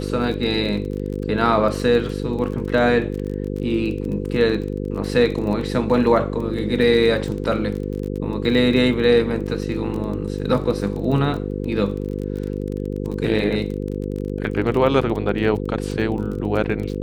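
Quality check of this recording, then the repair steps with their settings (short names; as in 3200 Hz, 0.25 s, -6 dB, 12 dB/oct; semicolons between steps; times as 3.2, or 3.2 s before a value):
buzz 50 Hz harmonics 10 -26 dBFS
crackle 25/s -27 dBFS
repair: de-click; de-hum 50 Hz, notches 10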